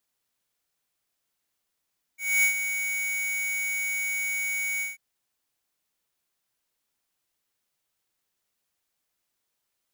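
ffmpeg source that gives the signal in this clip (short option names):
-f lavfi -i "aevalsrc='0.1*(2*lt(mod(2240*t,1),0.5)-1)':d=2.791:s=44100,afade=t=in:d=0.252,afade=t=out:st=0.252:d=0.098:silence=0.355,afade=t=out:st=2.63:d=0.161"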